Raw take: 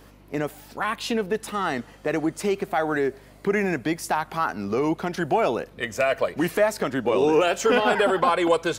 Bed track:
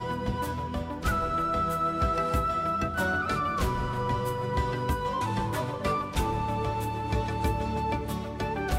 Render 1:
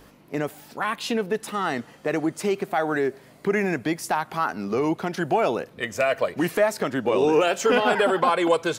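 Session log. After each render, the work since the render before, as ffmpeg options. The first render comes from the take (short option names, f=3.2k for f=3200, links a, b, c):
-af "bandreject=f=50:t=h:w=4,bandreject=f=100:t=h:w=4"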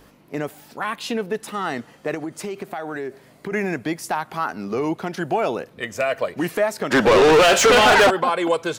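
-filter_complex "[0:a]asettb=1/sr,asplit=3[a][b][c];[a]atrim=end=2.144[d];[b]atrim=start=2.14:end=3.52,asetpts=PTS-STARTPTS,afade=t=in:d=0.004:c=qsin,afade=t=out:st=1.376:d=0.004:c=qsin,acompressor=threshold=-25dB:ratio=6:attack=3.2:release=140:knee=1:detection=peak[e];[c]atrim=start=3.516[f];[d][e]acrossfade=d=0.004:c1=hsin:c2=qsin[g];[g][f]acrossfade=d=0.004:c1=qsin:c2=hsin,asplit=3[h][i][j];[h]afade=t=out:st=6.9:d=0.02[k];[i]asplit=2[l][m];[m]highpass=f=720:p=1,volume=29dB,asoftclip=type=tanh:threshold=-6.5dB[n];[l][n]amix=inputs=2:normalize=0,lowpass=f=5k:p=1,volume=-6dB,afade=t=in:st=6.9:d=0.02,afade=t=out:st=8.09:d=0.02[o];[j]afade=t=in:st=8.09:d=0.02[p];[k][o][p]amix=inputs=3:normalize=0"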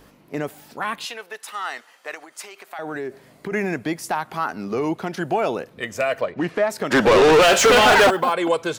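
-filter_complex "[0:a]asettb=1/sr,asplit=3[a][b][c];[a]atrim=end=1.054[d];[b]atrim=start=1.05:end=2.79,asetpts=PTS-STARTPTS,afade=t=in:d=0.004:c=qsin,afade=t=out:st=1.736:d=0.004:c=qsin,highpass=950[e];[c]atrim=start=2.786[f];[d][e]acrossfade=d=0.004:c1=hsin:c2=qsin[g];[g][f]acrossfade=d=0.004:c1=qsin:c2=hsin,asettb=1/sr,asplit=3[h][i][j];[h]atrim=end=6.214[k];[i]atrim=start=6.21:end=6.7,asetpts=PTS-STARTPTS,afade=t=in:d=0.004:c=qsin,afade=t=out:st=0.486:d=0.004:c=qsin,adynamicsmooth=sensitivity=1.5:basefreq=3.3k[l];[j]atrim=start=6.696[m];[k][l]acrossfade=d=0.004:c1=hsin:c2=qsin[n];[n][m]acrossfade=d=0.004:c1=qsin:c2=hsin,asettb=1/sr,asplit=3[o][p][q];[o]atrim=end=7.424[r];[p]atrim=start=7.42:end=8.33,asetpts=PTS-STARTPTS,afade=t=in:d=0.004:c=qsin,afade=t=out:st=0.906:d=0.004:c=qsin,acrusher=bits=7:mode=log:mix=0:aa=0.000001[s];[q]atrim=start=8.326[t];[r][s]acrossfade=d=0.004:c1=hsin:c2=qsin[u];[u][t]acrossfade=d=0.004:c1=qsin:c2=hsin"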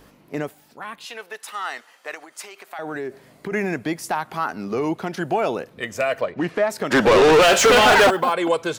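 -filter_complex "[0:a]asplit=3[a][b][c];[a]atrim=end=0.55,asetpts=PTS-STARTPTS,afade=t=out:st=0.42:d=0.13:silence=0.398107[d];[b]atrim=start=0.55:end=1.04,asetpts=PTS-STARTPTS,volume=-8dB[e];[c]atrim=start=1.04,asetpts=PTS-STARTPTS,afade=t=in:d=0.13:silence=0.398107[f];[d][e][f]concat=n=3:v=0:a=1"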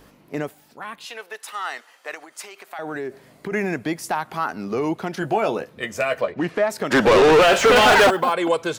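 -filter_complex "[0:a]asettb=1/sr,asplit=3[a][b][c];[a]atrim=end=1.074[d];[b]atrim=start=1.07:end=2.09,asetpts=PTS-STARTPTS,afade=t=in:d=0.004:c=qsin,afade=t=out:st=1.016:d=0.004:c=qsin,highpass=240[e];[c]atrim=start=2.086[f];[d][e]acrossfade=d=0.004:c1=hsin:c2=qsin[g];[g][f]acrossfade=d=0.004:c1=qsin:c2=hsin,asettb=1/sr,asplit=3[h][i][j];[h]atrim=end=5.214[k];[i]atrim=start=5.21:end=6.33,asetpts=PTS-STARTPTS,afade=t=in:d=0.004:c=qsin,afade=t=out:st=1.116:d=0.004:c=qsin,asplit=2[l][m];[m]adelay=14,volume=-8dB[n];[l][n]amix=inputs=2:normalize=0,atrim=end_sample=49392[o];[j]atrim=start=6.326[p];[k][o]acrossfade=d=0.004:c1=hsin:c2=qsin[q];[q][p]acrossfade=d=0.004:c1=qsin:c2=hsin,asettb=1/sr,asplit=3[r][s][t];[r]atrim=end=7.214[u];[s]atrim=start=7.21:end=7.76,asetpts=PTS-STARTPTS,afade=t=in:d=0.004:c=qsin,afade=t=out:st=0.546:d=0.004:c=qsin,acrossover=split=3000[v][w];[w]acompressor=threshold=-26dB:ratio=4:attack=1:release=60[x];[v][x]amix=inputs=2:normalize=0[y];[t]atrim=start=7.756[z];[u][y]acrossfade=d=0.004:c1=hsin:c2=qsin[aa];[aa][z]acrossfade=d=0.004:c1=qsin:c2=hsin"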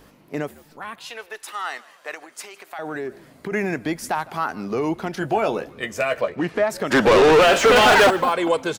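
-filter_complex "[0:a]asplit=4[a][b][c][d];[b]adelay=156,afreqshift=-73,volume=-22dB[e];[c]adelay=312,afreqshift=-146,volume=-28.4dB[f];[d]adelay=468,afreqshift=-219,volume=-34.8dB[g];[a][e][f][g]amix=inputs=4:normalize=0"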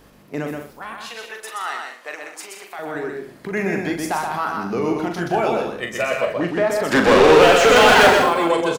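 -filter_complex "[0:a]asplit=2[a][b];[b]adelay=41,volume=-7dB[c];[a][c]amix=inputs=2:normalize=0,aecho=1:1:125.4|195.3:0.631|0.282"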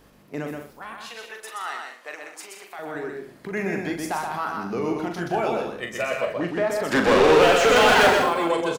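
-af "volume=-4.5dB"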